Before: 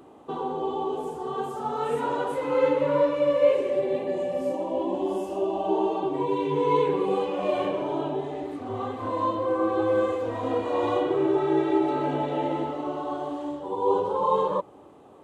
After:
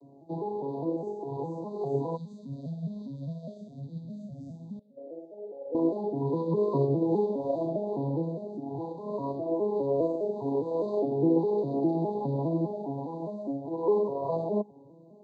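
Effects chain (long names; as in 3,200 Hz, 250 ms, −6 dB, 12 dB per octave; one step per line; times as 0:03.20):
vocoder with an arpeggio as carrier minor triad, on C#3, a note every 204 ms
0:04.79–0:05.75: formant filter e
0:02.16–0:04.97: gain on a spectral selection 260–2,200 Hz −25 dB
Chebyshev band-stop filter 980–3,800 Hz, order 5
phaser whose notches keep moving one way rising 1.2 Hz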